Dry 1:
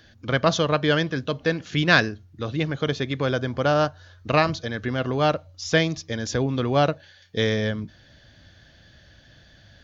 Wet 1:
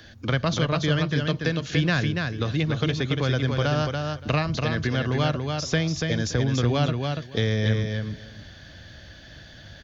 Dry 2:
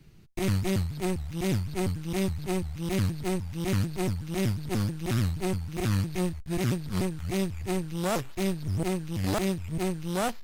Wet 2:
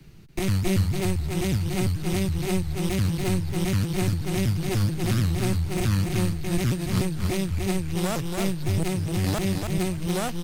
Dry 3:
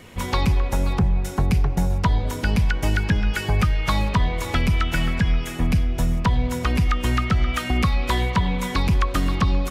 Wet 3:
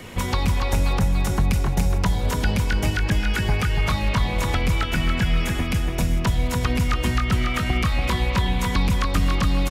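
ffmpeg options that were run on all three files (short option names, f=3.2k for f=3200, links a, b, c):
-filter_complex "[0:a]acrossover=split=150|1800[a][b][c];[a]acompressor=threshold=-28dB:ratio=4[d];[b]acompressor=threshold=-34dB:ratio=4[e];[c]acompressor=threshold=-38dB:ratio=4[f];[d][e][f]amix=inputs=3:normalize=0,aecho=1:1:286|572|858:0.596|0.0953|0.0152,volume=6dB"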